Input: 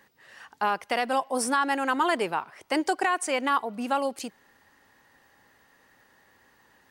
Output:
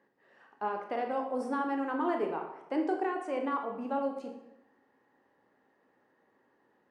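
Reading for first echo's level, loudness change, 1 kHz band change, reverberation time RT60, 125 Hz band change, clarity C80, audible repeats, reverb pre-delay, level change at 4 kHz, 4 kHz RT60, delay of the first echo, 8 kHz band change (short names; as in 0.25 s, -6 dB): none, -6.5 dB, -8.0 dB, 0.90 s, n/a, 9.0 dB, none, 14 ms, -19.5 dB, 0.65 s, none, under -25 dB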